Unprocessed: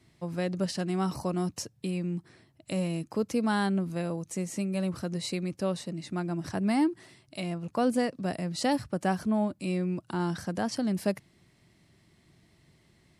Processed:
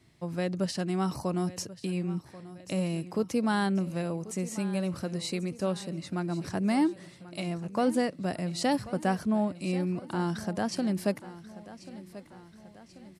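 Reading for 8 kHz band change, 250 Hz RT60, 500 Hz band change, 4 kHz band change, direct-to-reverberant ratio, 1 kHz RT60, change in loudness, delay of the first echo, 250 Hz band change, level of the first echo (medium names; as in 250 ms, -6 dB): 0.0 dB, no reverb, 0.0 dB, 0.0 dB, no reverb, no reverb, 0.0 dB, 1087 ms, 0.0 dB, -16.5 dB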